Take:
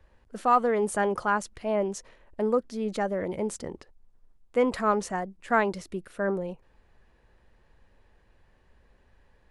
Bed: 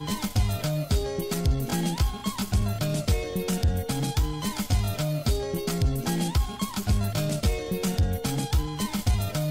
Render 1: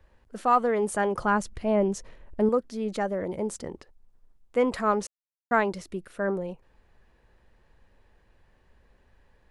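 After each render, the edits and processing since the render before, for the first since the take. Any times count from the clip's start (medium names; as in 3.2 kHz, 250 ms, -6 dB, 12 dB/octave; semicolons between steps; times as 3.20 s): 1.18–2.49 s: bass shelf 280 Hz +10.5 dB; 3.15–3.55 s: peaking EQ 2.5 kHz -4.5 dB 1.2 oct; 5.07–5.51 s: mute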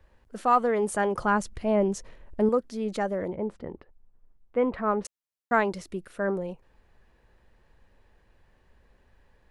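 3.30–5.05 s: distance through air 470 m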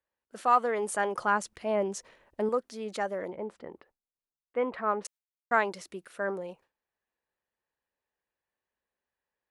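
high-pass 630 Hz 6 dB/octave; gate with hold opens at -55 dBFS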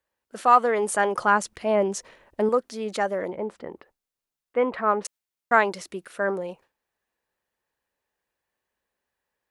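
trim +6.5 dB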